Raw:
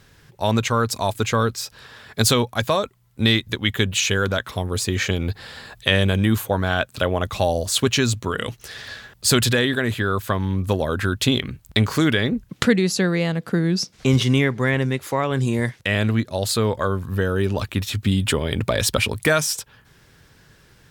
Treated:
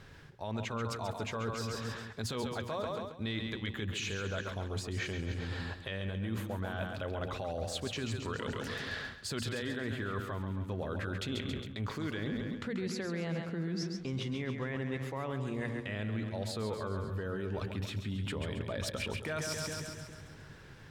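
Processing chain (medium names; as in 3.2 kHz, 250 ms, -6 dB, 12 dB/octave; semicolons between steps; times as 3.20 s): treble shelf 4.5 kHz -9 dB; hum notches 60/120/180/240 Hz; peak limiter -15 dBFS, peak gain reduction 10.5 dB; treble shelf 10 kHz -8 dB; two-band feedback delay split 330 Hz, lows 206 ms, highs 136 ms, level -7 dB; reverse; compression 5:1, threshold -35 dBFS, peak gain reduction 15.5 dB; reverse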